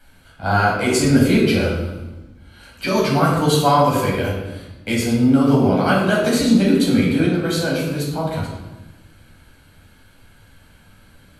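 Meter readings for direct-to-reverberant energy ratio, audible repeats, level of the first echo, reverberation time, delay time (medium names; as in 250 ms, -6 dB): -5.0 dB, no echo, no echo, 1.1 s, no echo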